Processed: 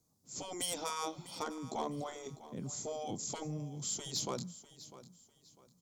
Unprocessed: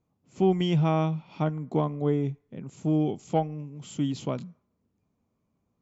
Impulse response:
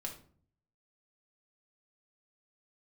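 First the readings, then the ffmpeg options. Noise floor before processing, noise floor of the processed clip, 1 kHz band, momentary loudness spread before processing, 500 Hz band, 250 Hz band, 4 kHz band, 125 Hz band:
-77 dBFS, -71 dBFS, -8.5 dB, 14 LU, -13.5 dB, -17.0 dB, 0.0 dB, -18.0 dB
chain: -filter_complex "[0:a]afftfilt=real='re*lt(hypot(re,im),0.178)':imag='im*lt(hypot(re,im),0.178)':win_size=1024:overlap=0.75,acrossover=split=5600[s0][s1];[s1]acompressor=threshold=0.00126:ratio=4:attack=1:release=60[s2];[s0][s2]amix=inputs=2:normalize=0,aemphasis=mode=reproduction:type=cd,acrossover=split=120|1600[s3][s4][s5];[s5]asoftclip=type=tanh:threshold=0.0126[s6];[s3][s4][s6]amix=inputs=3:normalize=0,aexciter=amount=15.3:drive=5.5:freq=4200,aeval=exprs='0.075*(abs(mod(val(0)/0.075+3,4)-2)-1)':c=same,asplit=2[s7][s8];[s8]aecho=0:1:650|1300|1950:0.158|0.0475|0.0143[s9];[s7][s9]amix=inputs=2:normalize=0,volume=0.708"

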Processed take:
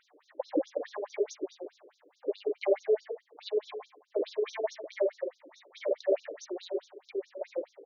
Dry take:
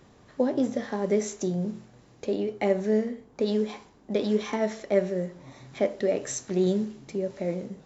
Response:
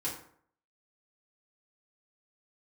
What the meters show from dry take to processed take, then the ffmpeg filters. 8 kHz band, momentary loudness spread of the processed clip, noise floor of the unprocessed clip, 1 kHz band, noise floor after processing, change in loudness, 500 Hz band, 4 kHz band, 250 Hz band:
no reading, 13 LU, -57 dBFS, -7.0 dB, -71 dBFS, -6.0 dB, -4.0 dB, -5.0 dB, -13.5 dB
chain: -filter_complex "[0:a]asplit=2[s0][s1];[s1]adelay=73,lowpass=f=3400:p=1,volume=0.596,asplit=2[s2][s3];[s3]adelay=73,lowpass=f=3400:p=1,volume=0.38,asplit=2[s4][s5];[s5]adelay=73,lowpass=f=3400:p=1,volume=0.38,asplit=2[s6][s7];[s7]adelay=73,lowpass=f=3400:p=1,volume=0.38,asplit=2[s8][s9];[s9]adelay=73,lowpass=f=3400:p=1,volume=0.38[s10];[s0][s2][s4][s6][s8][s10]amix=inputs=6:normalize=0,asplit=2[s11][s12];[1:a]atrim=start_sample=2205,atrim=end_sample=4410[s13];[s12][s13]afir=irnorm=-1:irlink=0,volume=0.376[s14];[s11][s14]amix=inputs=2:normalize=0,afftfilt=real='re*between(b*sr/1024,390*pow(5000/390,0.5+0.5*sin(2*PI*4.7*pts/sr))/1.41,390*pow(5000/390,0.5+0.5*sin(2*PI*4.7*pts/sr))*1.41)':imag='im*between(b*sr/1024,390*pow(5000/390,0.5+0.5*sin(2*PI*4.7*pts/sr))/1.41,390*pow(5000/390,0.5+0.5*sin(2*PI*4.7*pts/sr))*1.41)':win_size=1024:overlap=0.75,volume=0.841"

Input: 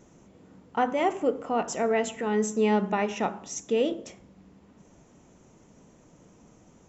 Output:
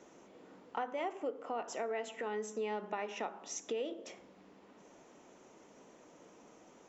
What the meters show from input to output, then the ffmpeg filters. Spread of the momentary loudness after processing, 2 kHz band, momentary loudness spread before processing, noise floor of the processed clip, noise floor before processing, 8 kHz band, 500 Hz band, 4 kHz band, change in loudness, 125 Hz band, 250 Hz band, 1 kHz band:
21 LU, -10.5 dB, 8 LU, -61 dBFS, -57 dBFS, no reading, -12.0 dB, -9.5 dB, -12.5 dB, under -20 dB, -18.0 dB, -11.5 dB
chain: -filter_complex "[0:a]acrossover=split=280 6300:gain=0.0891 1 0.224[s0][s1][s2];[s0][s1][s2]amix=inputs=3:normalize=0,acompressor=threshold=0.00891:ratio=3,volume=1.19"

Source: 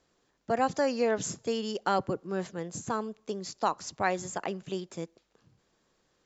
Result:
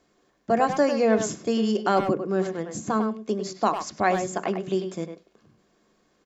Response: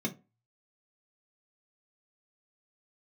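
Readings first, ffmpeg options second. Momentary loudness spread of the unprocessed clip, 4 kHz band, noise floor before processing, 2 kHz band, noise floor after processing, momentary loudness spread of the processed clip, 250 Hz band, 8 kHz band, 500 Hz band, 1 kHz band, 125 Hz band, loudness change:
10 LU, +3.0 dB, -73 dBFS, +4.5 dB, -67 dBFS, 9 LU, +9.5 dB, no reading, +7.0 dB, +5.5 dB, +6.5 dB, +7.0 dB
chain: -filter_complex "[0:a]acontrast=35,asplit=2[s0][s1];[s1]adelay=100,highpass=300,lowpass=3400,asoftclip=type=hard:threshold=0.15,volume=0.501[s2];[s0][s2]amix=inputs=2:normalize=0,asplit=2[s3][s4];[1:a]atrim=start_sample=2205,lowpass=2500,lowshelf=f=310:g=-12[s5];[s4][s5]afir=irnorm=-1:irlink=0,volume=0.473[s6];[s3][s6]amix=inputs=2:normalize=0,volume=0.75"

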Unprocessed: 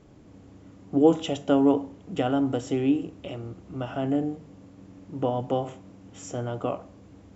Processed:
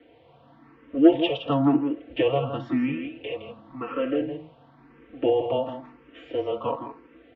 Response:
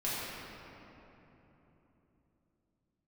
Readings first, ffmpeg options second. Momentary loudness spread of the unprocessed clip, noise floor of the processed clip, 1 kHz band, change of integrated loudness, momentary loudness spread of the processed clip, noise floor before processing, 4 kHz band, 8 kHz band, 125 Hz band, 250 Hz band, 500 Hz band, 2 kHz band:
17 LU, -56 dBFS, +0.5 dB, +1.0 dB, 17 LU, -51 dBFS, +4.5 dB, no reading, -1.5 dB, +1.0 dB, +2.0 dB, +5.0 dB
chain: -filter_complex "[0:a]aecho=1:1:4.7:0.94,acontrast=42,highpass=f=410:t=q:w=0.5412,highpass=f=410:t=q:w=1.307,lowpass=f=3600:t=q:w=0.5176,lowpass=f=3600:t=q:w=0.7071,lowpass=f=3600:t=q:w=1.932,afreqshift=-140,asplit=2[s0][s1];[s1]aecho=0:1:165:0.398[s2];[s0][s2]amix=inputs=2:normalize=0,asplit=2[s3][s4];[s4]afreqshift=0.96[s5];[s3][s5]amix=inputs=2:normalize=1"

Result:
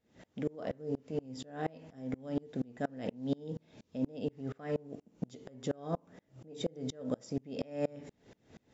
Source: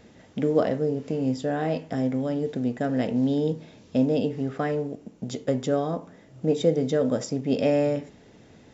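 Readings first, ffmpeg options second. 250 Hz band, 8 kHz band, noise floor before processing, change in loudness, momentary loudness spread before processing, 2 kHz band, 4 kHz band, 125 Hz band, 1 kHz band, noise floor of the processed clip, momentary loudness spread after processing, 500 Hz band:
-13.0 dB, no reading, -53 dBFS, -13.0 dB, 8 LU, -12.5 dB, -10.0 dB, -12.5 dB, -12.0 dB, -76 dBFS, 9 LU, -14.0 dB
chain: -af "alimiter=limit=0.0944:level=0:latency=1:release=125,aeval=exprs='val(0)*pow(10,-31*if(lt(mod(-4.2*n/s,1),2*abs(-4.2)/1000),1-mod(-4.2*n/s,1)/(2*abs(-4.2)/1000),(mod(-4.2*n/s,1)-2*abs(-4.2)/1000)/(1-2*abs(-4.2)/1000))/20)':c=same"

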